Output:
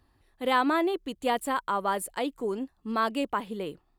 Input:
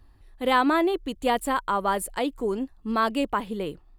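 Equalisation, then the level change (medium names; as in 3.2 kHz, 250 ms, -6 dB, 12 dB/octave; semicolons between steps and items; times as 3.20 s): high-pass 140 Hz 6 dB/octave; -3.0 dB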